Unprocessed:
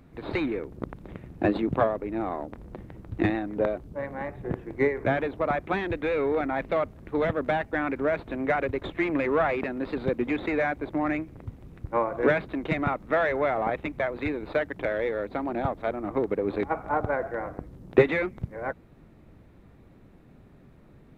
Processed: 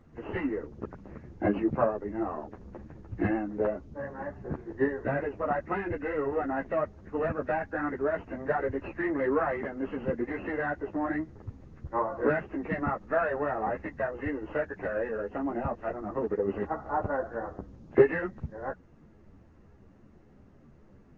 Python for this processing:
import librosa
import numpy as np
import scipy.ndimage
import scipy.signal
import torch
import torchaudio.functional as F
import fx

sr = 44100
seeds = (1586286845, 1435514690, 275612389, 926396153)

y = fx.freq_compress(x, sr, knee_hz=1400.0, ratio=1.5)
y = fx.ensemble(y, sr)